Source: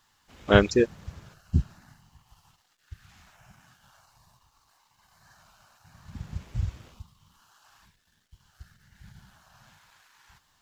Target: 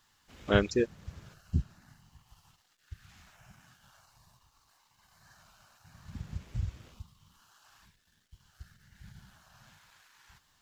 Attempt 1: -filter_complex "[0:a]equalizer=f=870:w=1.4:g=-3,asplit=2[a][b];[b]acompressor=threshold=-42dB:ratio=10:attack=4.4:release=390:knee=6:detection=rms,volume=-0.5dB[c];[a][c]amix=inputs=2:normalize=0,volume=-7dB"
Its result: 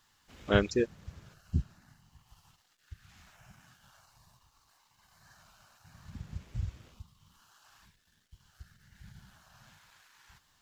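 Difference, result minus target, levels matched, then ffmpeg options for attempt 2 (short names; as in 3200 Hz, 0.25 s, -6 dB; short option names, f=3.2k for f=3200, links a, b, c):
compressor: peak gain reduction +9 dB
-filter_complex "[0:a]equalizer=f=870:w=1.4:g=-3,asplit=2[a][b];[b]acompressor=threshold=-32dB:ratio=10:attack=4.4:release=390:knee=6:detection=rms,volume=-0.5dB[c];[a][c]amix=inputs=2:normalize=0,volume=-7dB"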